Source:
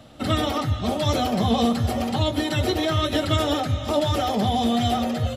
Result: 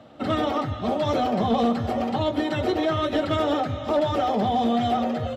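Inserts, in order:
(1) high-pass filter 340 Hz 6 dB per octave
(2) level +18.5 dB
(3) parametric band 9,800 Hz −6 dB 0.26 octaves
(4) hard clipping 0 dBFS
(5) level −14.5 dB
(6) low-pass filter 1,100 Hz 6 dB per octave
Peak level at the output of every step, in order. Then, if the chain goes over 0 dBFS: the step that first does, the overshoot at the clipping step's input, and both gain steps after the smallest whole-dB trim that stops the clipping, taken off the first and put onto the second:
−11.5, +7.0, +7.0, 0.0, −14.5, −14.5 dBFS
step 2, 7.0 dB
step 2 +11.5 dB, step 5 −7.5 dB

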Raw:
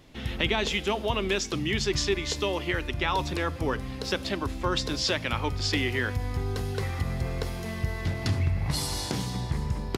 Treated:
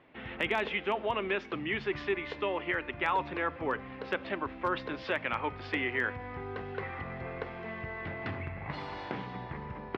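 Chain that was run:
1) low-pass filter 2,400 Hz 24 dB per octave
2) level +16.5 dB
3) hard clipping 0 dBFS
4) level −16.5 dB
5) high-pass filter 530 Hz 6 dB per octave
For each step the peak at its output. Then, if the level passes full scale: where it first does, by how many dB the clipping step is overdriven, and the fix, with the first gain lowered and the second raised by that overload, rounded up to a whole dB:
−13.5, +3.0, 0.0, −16.5, −16.0 dBFS
step 2, 3.0 dB
step 2 +13.5 dB, step 4 −13.5 dB

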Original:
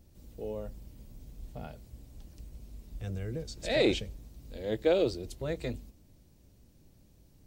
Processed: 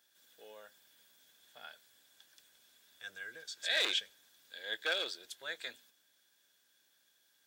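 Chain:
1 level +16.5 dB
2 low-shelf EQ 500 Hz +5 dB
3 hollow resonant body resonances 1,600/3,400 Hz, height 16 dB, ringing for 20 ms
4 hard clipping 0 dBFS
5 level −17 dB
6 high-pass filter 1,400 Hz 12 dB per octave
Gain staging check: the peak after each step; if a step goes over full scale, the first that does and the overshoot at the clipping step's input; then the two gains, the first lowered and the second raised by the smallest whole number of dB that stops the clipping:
+3.5, +5.5, +7.0, 0.0, −17.0, −17.0 dBFS
step 1, 7.0 dB
step 1 +9.5 dB, step 5 −10 dB

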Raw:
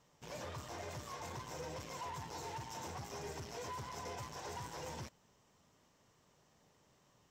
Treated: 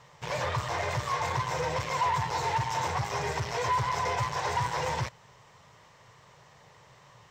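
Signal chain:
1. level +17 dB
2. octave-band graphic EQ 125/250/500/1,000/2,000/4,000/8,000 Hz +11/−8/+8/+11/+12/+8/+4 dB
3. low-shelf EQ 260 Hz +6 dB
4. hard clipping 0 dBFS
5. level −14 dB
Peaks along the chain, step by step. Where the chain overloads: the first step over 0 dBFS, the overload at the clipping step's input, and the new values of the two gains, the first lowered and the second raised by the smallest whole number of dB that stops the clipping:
−21.0, −4.5, −4.5, −4.5, −18.5 dBFS
no step passes full scale

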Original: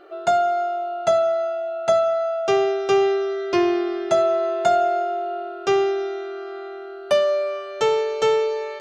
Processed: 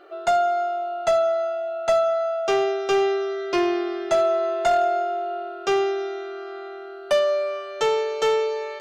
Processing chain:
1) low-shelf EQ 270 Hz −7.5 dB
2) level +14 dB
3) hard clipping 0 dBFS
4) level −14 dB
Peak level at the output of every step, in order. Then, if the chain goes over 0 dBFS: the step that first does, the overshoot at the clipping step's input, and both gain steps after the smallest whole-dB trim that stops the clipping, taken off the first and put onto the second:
−8.0, +6.0, 0.0, −14.0 dBFS
step 2, 6.0 dB
step 2 +8 dB, step 4 −8 dB

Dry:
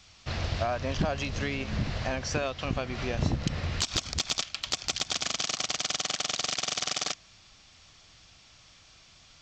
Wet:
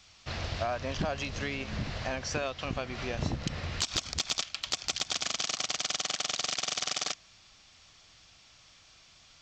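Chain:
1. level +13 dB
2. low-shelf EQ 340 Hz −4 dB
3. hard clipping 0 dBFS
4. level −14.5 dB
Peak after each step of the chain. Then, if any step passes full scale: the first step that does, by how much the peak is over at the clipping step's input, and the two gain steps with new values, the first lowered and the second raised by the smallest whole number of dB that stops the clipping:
−3.0, −2.5, −2.5, −17.0 dBFS
no step passes full scale

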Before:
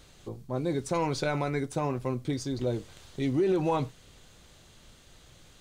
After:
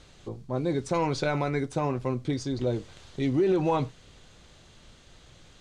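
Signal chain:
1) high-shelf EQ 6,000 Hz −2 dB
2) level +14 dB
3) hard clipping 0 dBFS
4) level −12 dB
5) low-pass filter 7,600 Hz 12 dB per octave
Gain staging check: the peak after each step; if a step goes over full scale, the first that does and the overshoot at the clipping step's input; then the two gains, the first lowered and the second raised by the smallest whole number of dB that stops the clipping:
−18.5, −4.5, −4.5, −16.5, −16.5 dBFS
no step passes full scale

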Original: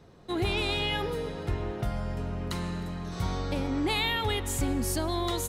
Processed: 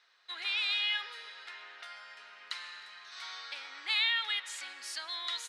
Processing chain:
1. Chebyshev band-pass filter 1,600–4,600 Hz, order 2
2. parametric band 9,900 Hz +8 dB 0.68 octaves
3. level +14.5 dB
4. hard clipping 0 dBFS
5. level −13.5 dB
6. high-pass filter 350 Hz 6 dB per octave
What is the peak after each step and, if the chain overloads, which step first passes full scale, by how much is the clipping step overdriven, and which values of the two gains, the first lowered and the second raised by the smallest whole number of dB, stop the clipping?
−19.5, −19.0, −4.5, −4.5, −18.0, −18.0 dBFS
no step passes full scale

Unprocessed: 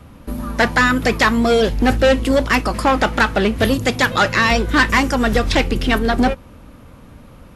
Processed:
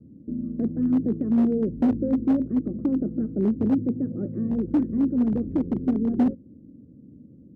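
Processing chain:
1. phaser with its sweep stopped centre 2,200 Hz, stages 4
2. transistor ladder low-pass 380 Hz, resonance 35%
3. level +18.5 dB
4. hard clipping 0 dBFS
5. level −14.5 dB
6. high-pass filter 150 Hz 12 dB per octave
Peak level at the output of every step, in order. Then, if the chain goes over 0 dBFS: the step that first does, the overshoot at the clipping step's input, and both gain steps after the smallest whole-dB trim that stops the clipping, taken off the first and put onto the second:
−3.5, −12.5, +6.0, 0.0, −14.5, −11.5 dBFS
step 3, 6.0 dB
step 3 +12.5 dB, step 5 −8.5 dB

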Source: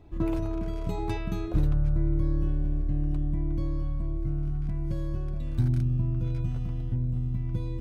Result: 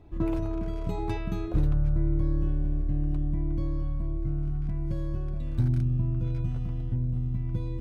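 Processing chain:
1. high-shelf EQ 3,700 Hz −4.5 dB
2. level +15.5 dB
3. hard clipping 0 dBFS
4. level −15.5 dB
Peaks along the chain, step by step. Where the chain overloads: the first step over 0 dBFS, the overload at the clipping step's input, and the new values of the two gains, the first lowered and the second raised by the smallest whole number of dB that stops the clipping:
−12.5, +3.0, 0.0, −15.5 dBFS
step 2, 3.0 dB
step 2 +12.5 dB, step 4 −12.5 dB

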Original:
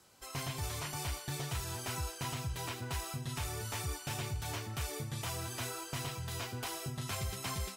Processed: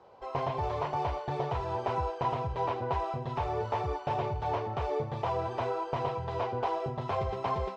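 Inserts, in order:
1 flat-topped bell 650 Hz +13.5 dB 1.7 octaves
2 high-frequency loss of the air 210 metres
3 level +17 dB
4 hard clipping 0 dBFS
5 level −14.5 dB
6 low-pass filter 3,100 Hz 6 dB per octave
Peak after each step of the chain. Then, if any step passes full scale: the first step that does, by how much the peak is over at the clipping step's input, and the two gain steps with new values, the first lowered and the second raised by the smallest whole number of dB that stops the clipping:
−18.0, −19.5, −2.5, −2.5, −17.0, −17.5 dBFS
no step passes full scale

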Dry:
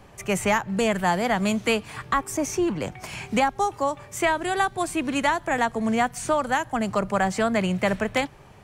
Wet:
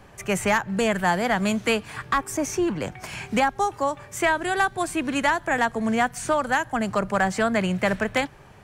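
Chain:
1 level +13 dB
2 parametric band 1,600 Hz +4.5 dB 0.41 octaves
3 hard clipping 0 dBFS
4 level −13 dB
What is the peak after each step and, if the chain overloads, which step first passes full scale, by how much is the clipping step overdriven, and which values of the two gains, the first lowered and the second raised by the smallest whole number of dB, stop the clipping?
+3.5, +4.5, 0.0, −13.0 dBFS
step 1, 4.5 dB
step 1 +8 dB, step 4 −8 dB

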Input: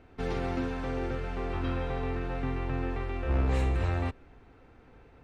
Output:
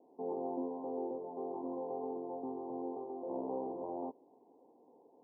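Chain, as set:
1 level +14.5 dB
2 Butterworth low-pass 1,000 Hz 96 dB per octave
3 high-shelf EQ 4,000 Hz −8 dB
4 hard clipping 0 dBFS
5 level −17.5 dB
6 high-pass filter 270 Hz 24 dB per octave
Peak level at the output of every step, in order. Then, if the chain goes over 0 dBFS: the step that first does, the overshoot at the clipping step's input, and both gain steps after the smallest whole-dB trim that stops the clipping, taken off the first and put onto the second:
−2.5, −2.5, −2.5, −2.5, −20.0, −27.0 dBFS
no step passes full scale

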